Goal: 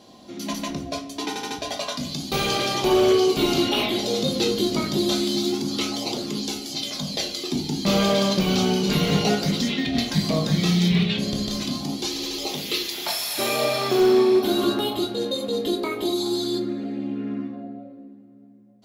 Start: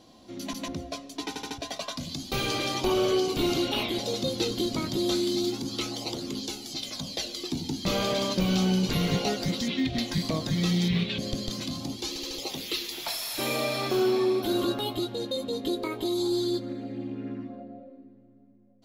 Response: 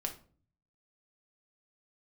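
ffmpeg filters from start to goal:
-filter_complex "[0:a]highpass=f=100:p=1[s0];[1:a]atrim=start_sample=2205[s1];[s0][s1]afir=irnorm=-1:irlink=0,volume=7.5,asoftclip=hard,volume=0.133,volume=1.88"

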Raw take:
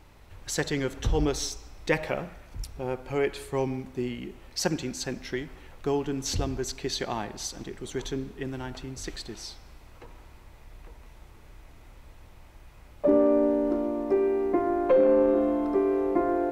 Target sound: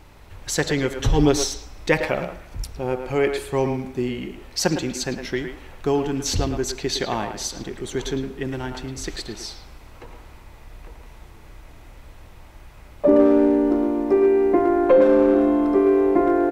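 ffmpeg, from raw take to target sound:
-filter_complex "[0:a]asettb=1/sr,asplit=3[s0][s1][s2];[s0]atrim=end=0.984[s3];[s1]atrim=start=0.98:end=1.44,asetpts=PTS-STARTPTS,afade=t=in:d=0.004:c=qsin,afade=t=out:st=0.456:d=0.004:c=qsin,aecho=1:1:7.3:0.79,atrim=end_sample=20286[s4];[s2]atrim=start=1.436[s5];[s3][s4]acrossfade=d=0.004:c1=hsin:c2=qsin[s6];[s6][s5]acrossfade=d=0.004:c1=qsin:c2=hsin,asplit=2[s7][s8];[s8]adelay=110,highpass=300,lowpass=3400,asoftclip=type=hard:threshold=0.119,volume=0.447[s9];[s7][s9]amix=inputs=2:normalize=0,volume=2"

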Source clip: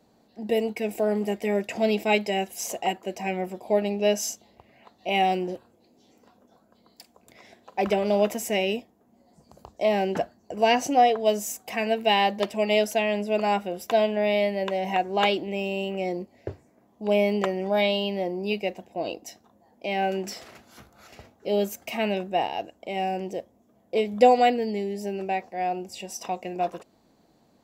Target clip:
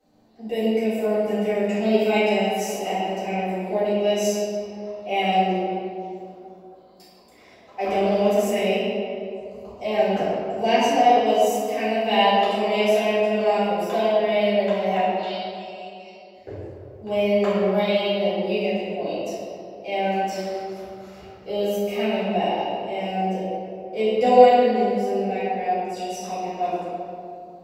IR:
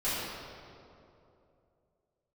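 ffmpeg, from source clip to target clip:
-filter_complex "[0:a]asettb=1/sr,asplit=3[s0][s1][s2];[s0]atrim=end=15.034[s3];[s1]atrim=start=15.03:end=16.34,asetpts=PTS-STARTPTS,afade=t=in:d=0.004:c=qsin,afade=t=out:st=1.306:d=0.004:c=qsin,bandpass=f=4500:t=q:w=3.1:csg=0[s4];[s2]atrim=start=16.336[s5];[s3][s4]acrossfade=d=0.004:c1=hsin:c2=qsin[s6];[s6][s5]acrossfade=d=0.004:c1=qsin:c2=hsin[s7];[1:a]atrim=start_sample=2205[s8];[s7][s8]afir=irnorm=-1:irlink=0,volume=0.447"

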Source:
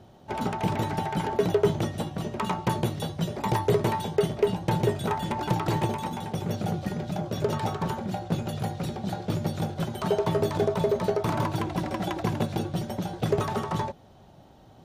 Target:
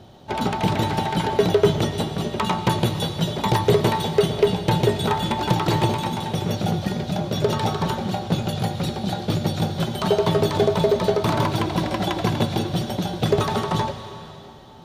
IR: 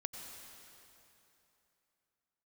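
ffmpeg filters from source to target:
-filter_complex "[0:a]asplit=2[s0][s1];[s1]equalizer=f=3800:w=1.2:g=12[s2];[1:a]atrim=start_sample=2205[s3];[s2][s3]afir=irnorm=-1:irlink=0,volume=0.794[s4];[s0][s4]amix=inputs=2:normalize=0,volume=1.19"

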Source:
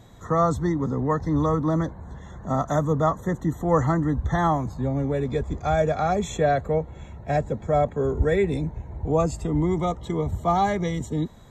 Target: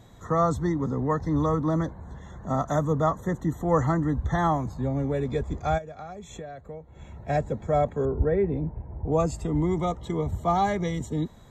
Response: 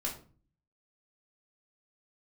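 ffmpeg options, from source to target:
-filter_complex "[0:a]asplit=3[s0][s1][s2];[s0]afade=t=out:st=5.77:d=0.02[s3];[s1]acompressor=threshold=0.02:ratio=16,afade=t=in:st=5.77:d=0.02,afade=t=out:st=7.14:d=0.02[s4];[s2]afade=t=in:st=7.14:d=0.02[s5];[s3][s4][s5]amix=inputs=3:normalize=0,asettb=1/sr,asplit=3[s6][s7][s8];[s6]atrim=end=8.054[s9];[s7]atrim=start=8.05:end=9.12,asetpts=PTS-STARTPTS,afade=t=in:d=0.004:c=qsin,afade=t=out:st=1.066:d=0.004:c=qsin,lowpass=1200[s10];[s8]atrim=start=9.116[s11];[s9][s10]acrossfade=d=0.004:c1=hsin:c2=qsin[s12];[s12][s11]acrossfade=d=0.004:c1=qsin:c2=hsin,volume=0.794"

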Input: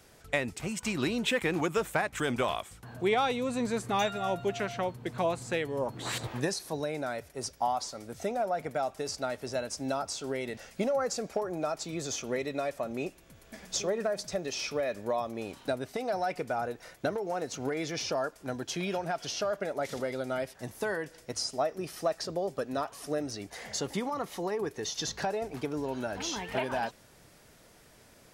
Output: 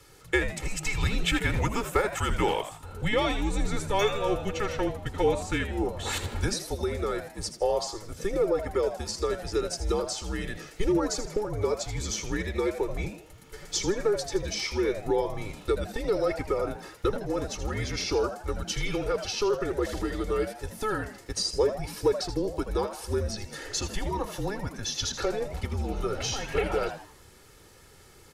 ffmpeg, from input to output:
-filter_complex "[0:a]afreqshift=-210,aecho=1:1:2.3:0.78,asplit=5[s0][s1][s2][s3][s4];[s1]adelay=80,afreqshift=140,volume=0.282[s5];[s2]adelay=160,afreqshift=280,volume=0.105[s6];[s3]adelay=240,afreqshift=420,volume=0.0385[s7];[s4]adelay=320,afreqshift=560,volume=0.0143[s8];[s0][s5][s6][s7][s8]amix=inputs=5:normalize=0,volume=1.19"

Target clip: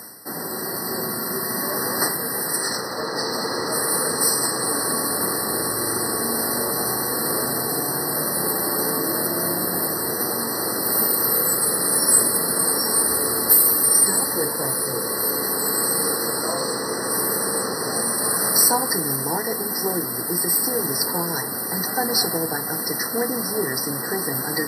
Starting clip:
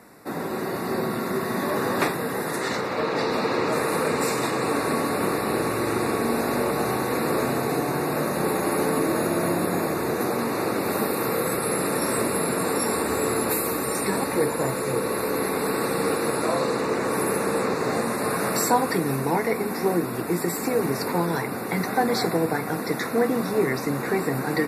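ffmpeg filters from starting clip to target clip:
-af "equalizer=f=7900:t=o:w=1.3:g=7,areverse,acompressor=mode=upward:threshold=0.0355:ratio=2.5,areverse,crystalizer=i=4.5:c=0,afftfilt=real='re*eq(mod(floor(b*sr/1024/2000),2),0)':imag='im*eq(mod(floor(b*sr/1024/2000),2),0)':win_size=1024:overlap=0.75,volume=0.668"

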